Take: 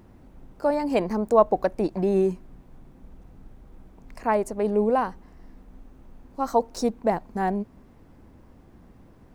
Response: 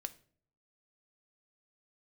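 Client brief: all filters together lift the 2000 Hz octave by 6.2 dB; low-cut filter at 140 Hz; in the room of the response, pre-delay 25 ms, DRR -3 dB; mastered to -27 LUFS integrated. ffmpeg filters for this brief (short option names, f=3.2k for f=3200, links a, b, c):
-filter_complex "[0:a]highpass=140,equalizer=f=2k:t=o:g=8,asplit=2[a][b];[1:a]atrim=start_sample=2205,adelay=25[c];[b][c]afir=irnorm=-1:irlink=0,volume=5.5dB[d];[a][d]amix=inputs=2:normalize=0,volume=-7dB"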